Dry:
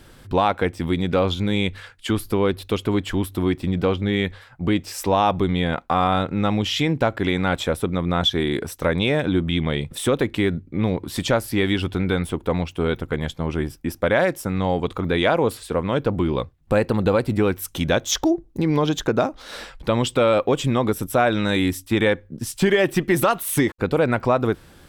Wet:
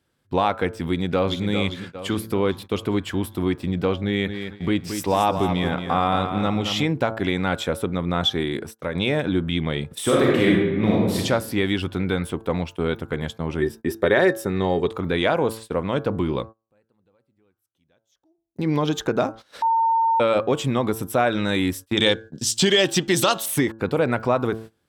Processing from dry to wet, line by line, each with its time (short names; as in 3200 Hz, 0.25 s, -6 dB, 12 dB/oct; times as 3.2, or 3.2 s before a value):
0.86–1.44 echo throw 0.4 s, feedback 50%, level -8 dB
4.03–6.86 feedback echo 0.224 s, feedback 35%, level -8 dB
8.33–8.95 fade out, to -6.5 dB
10.02–11.17 reverb throw, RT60 1.2 s, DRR -5 dB
13.61–14.87 small resonant body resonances 390/1800/3700 Hz, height 17 dB -> 14 dB, ringing for 80 ms
16.37–18.68 dip -22.5 dB, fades 0.29 s
19.62–20.2 bleep 908 Hz -14.5 dBFS
21.97–23.46 band shelf 4900 Hz +13.5 dB
whole clip: de-hum 111.4 Hz, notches 15; gate -34 dBFS, range -21 dB; HPF 78 Hz; gain -1.5 dB